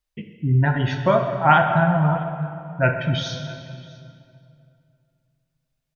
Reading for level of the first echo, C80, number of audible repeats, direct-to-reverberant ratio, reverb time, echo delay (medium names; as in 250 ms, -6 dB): -22.0 dB, 6.5 dB, 1, 5.0 dB, 2.5 s, 652 ms